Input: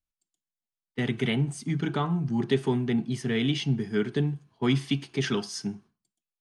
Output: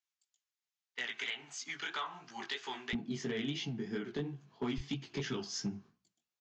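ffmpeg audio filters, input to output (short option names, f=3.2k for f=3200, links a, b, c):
-af "asetnsamples=n=441:p=0,asendcmd='2.93 highpass f 190;4.78 highpass f 45',highpass=1.3k,acompressor=threshold=-39dB:ratio=6,flanger=delay=15.5:depth=6:speed=3,asoftclip=type=hard:threshold=-36.5dB,aresample=16000,aresample=44100,volume=7dB"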